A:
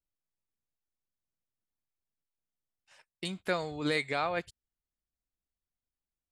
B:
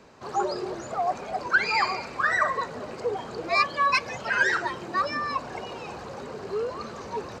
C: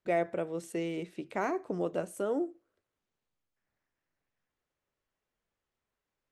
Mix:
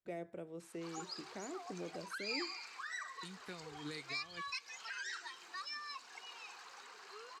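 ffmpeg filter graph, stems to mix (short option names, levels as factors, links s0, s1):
-filter_complex "[0:a]volume=0.224[s0];[1:a]highpass=1300,adelay=600,volume=0.531[s1];[2:a]volume=0.299[s2];[s0][s1]amix=inputs=2:normalize=0,equalizer=f=590:t=o:w=0.31:g=-13,alimiter=level_in=1.12:limit=0.0631:level=0:latency=1:release=241,volume=0.891,volume=1[s3];[s2][s3]amix=inputs=2:normalize=0,acrossover=split=450|3000[s4][s5][s6];[s5]acompressor=threshold=0.00224:ratio=2.5[s7];[s4][s7][s6]amix=inputs=3:normalize=0"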